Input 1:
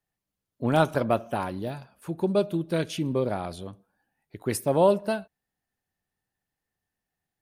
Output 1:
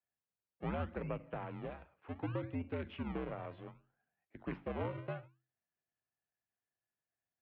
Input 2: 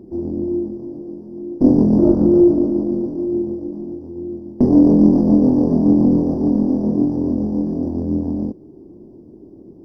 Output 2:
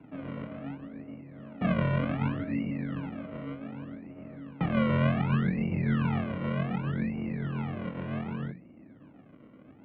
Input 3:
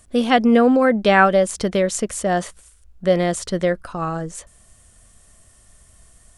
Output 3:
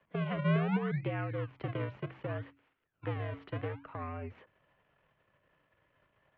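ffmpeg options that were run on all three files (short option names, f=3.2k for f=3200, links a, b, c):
-filter_complex "[0:a]aeval=exprs='if(lt(val(0),0),0.447*val(0),val(0))':c=same,bandreject=f=50:t=h:w=6,bandreject=f=100:t=h:w=6,bandreject=f=150:t=h:w=6,bandreject=f=200:t=h:w=6,bandreject=f=250:t=h:w=6,bandreject=f=300:t=h:w=6,bandreject=f=350:t=h:w=6,bandreject=f=400:t=h:w=6,acrossover=split=300[a][b];[a]acrusher=samples=34:mix=1:aa=0.000001:lfo=1:lforange=34:lforate=0.66[c];[b]acompressor=threshold=-32dB:ratio=6[d];[c][d]amix=inputs=2:normalize=0,highpass=f=160:t=q:w=0.5412,highpass=f=160:t=q:w=1.307,lowpass=f=2.9k:t=q:w=0.5176,lowpass=f=2.9k:t=q:w=0.7071,lowpass=f=2.9k:t=q:w=1.932,afreqshift=-71,volume=-7dB"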